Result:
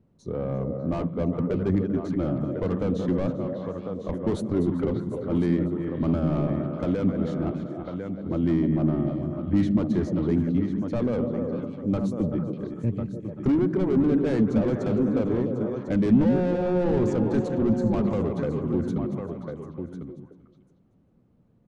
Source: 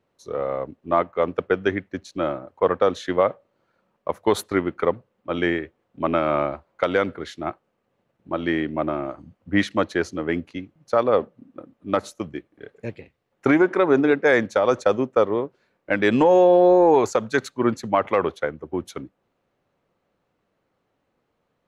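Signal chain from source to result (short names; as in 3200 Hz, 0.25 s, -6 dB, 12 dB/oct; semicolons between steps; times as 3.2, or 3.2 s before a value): regenerating reverse delay 0.196 s, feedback 40%, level -12.5 dB; on a send: echo 1.049 s -14 dB; on the sum: soft clip -21.5 dBFS, distortion -6 dB; EQ curve 210 Hz 0 dB, 460 Hz -14 dB, 1800 Hz -23 dB; delay with a stepping band-pass 0.149 s, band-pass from 180 Hz, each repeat 1.4 oct, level -1.5 dB; in parallel at -1.5 dB: compressor, threshold -44 dBFS, peak gain reduction 19 dB; on the sum: downsampling 22050 Hz; gain +9 dB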